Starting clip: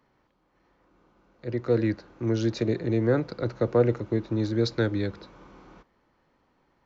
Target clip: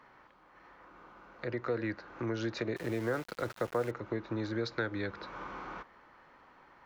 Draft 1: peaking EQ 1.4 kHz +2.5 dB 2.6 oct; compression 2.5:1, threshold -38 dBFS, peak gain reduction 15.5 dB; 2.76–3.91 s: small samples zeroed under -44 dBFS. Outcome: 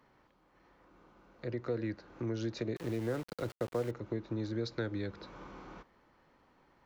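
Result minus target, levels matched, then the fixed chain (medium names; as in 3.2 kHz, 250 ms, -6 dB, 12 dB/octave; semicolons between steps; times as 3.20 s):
1 kHz band -6.0 dB
peaking EQ 1.4 kHz +14 dB 2.6 oct; compression 2.5:1, threshold -38 dBFS, peak gain reduction 18.5 dB; 2.76–3.91 s: small samples zeroed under -44 dBFS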